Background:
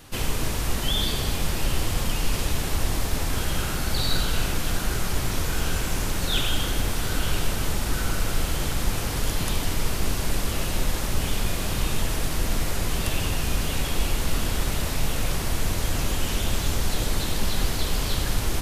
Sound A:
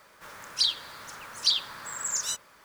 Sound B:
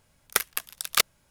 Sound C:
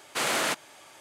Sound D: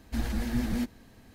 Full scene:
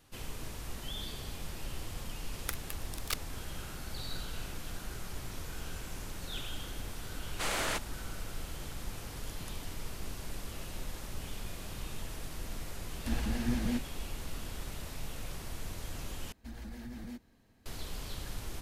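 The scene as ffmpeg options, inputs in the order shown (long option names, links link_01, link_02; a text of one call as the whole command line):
ffmpeg -i bed.wav -i cue0.wav -i cue1.wav -i cue2.wav -i cue3.wav -filter_complex "[4:a]asplit=2[link_01][link_02];[0:a]volume=-16dB[link_03];[link_01]lowpass=10000[link_04];[link_02]alimiter=limit=-24dB:level=0:latency=1:release=37[link_05];[link_03]asplit=2[link_06][link_07];[link_06]atrim=end=16.324[link_08];[link_05]atrim=end=1.34,asetpts=PTS-STARTPTS,volume=-12dB[link_09];[link_07]atrim=start=17.656[link_10];[2:a]atrim=end=1.3,asetpts=PTS-STARTPTS,volume=-14.5dB,afade=type=in:duration=0.004:curve=hsin,afade=type=out:start_time=1.296:duration=0.004:curve=hsin,adelay=2130[link_11];[3:a]atrim=end=1,asetpts=PTS-STARTPTS,volume=-7dB,afade=type=in:duration=0.004:curve=hsin,afade=type=out:start_time=0.996:duration=0.004:curve=hsin,adelay=7240[link_12];[link_04]atrim=end=1.34,asetpts=PTS-STARTPTS,volume=-3dB,afade=type=in:duration=0.004:curve=hsin,afade=type=out:start_time=1.336:duration=0.004:curve=hsin,adelay=12930[link_13];[link_08][link_09]acrossfade=duration=0.004:curve1=hsin:curve2=hsin[link_14];[link_14][link_10]acrossfade=duration=0.004:curve1=hsin:curve2=hsin[link_15];[link_15][link_11][link_12][link_13]amix=inputs=4:normalize=0" out.wav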